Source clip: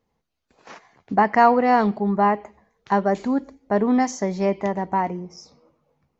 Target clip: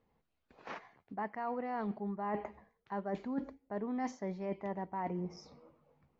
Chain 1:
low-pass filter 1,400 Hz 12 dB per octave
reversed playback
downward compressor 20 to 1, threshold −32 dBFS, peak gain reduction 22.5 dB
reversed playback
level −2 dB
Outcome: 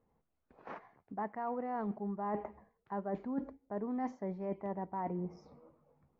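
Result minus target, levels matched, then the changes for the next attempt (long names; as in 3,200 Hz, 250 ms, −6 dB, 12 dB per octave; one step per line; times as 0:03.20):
4,000 Hz band −13.0 dB
change: low-pass filter 3,200 Hz 12 dB per octave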